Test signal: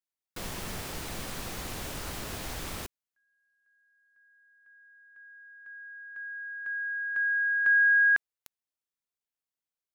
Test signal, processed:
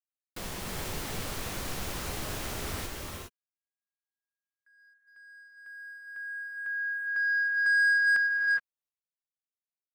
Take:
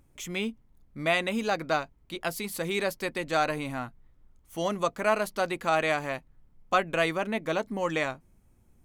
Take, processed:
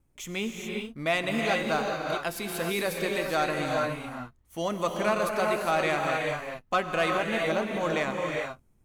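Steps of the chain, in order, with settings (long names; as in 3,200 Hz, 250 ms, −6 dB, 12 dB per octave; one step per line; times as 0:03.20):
noise gate with hold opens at −56 dBFS, range −32 dB
reverb whose tail is shaped and stops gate 440 ms rising, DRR 1 dB
leveller curve on the samples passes 1
level −4.5 dB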